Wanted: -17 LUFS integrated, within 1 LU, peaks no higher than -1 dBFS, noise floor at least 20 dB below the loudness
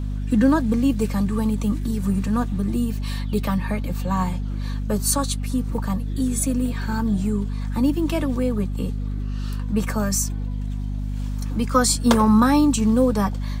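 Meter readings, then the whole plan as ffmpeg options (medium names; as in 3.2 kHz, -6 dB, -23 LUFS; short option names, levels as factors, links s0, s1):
hum 50 Hz; highest harmonic 250 Hz; hum level -23 dBFS; loudness -22.5 LUFS; peak level -3.0 dBFS; loudness target -17.0 LUFS
-> -af "bandreject=f=50:t=h:w=4,bandreject=f=100:t=h:w=4,bandreject=f=150:t=h:w=4,bandreject=f=200:t=h:w=4,bandreject=f=250:t=h:w=4"
-af "volume=1.88,alimiter=limit=0.891:level=0:latency=1"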